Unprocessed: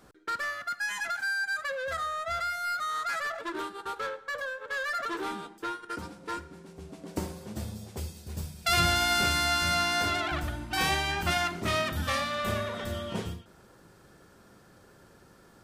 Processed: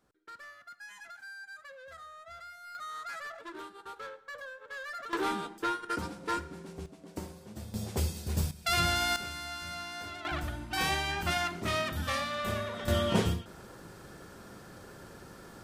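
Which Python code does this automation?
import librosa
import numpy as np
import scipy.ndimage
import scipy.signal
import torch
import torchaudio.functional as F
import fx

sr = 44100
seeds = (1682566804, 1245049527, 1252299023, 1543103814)

y = fx.gain(x, sr, db=fx.steps((0.0, -16.0), (2.75, -9.0), (5.13, 3.0), (6.86, -7.0), (7.74, 6.0), (8.51, -3.5), (9.16, -13.5), (10.25, -3.0), (12.88, 7.0)))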